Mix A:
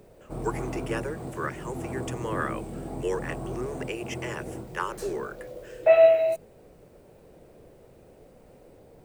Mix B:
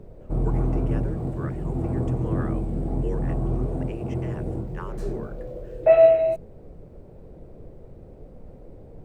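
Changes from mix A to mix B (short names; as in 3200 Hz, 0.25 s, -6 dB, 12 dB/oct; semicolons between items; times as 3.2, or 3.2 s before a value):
speech -8.0 dB; master: add tilt -3.5 dB/oct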